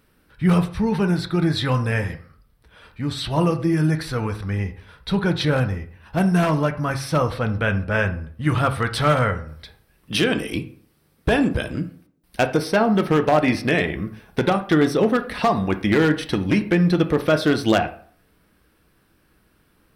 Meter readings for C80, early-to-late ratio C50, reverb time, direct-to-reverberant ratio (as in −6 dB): 17.5 dB, 13.5 dB, 0.50 s, 7.0 dB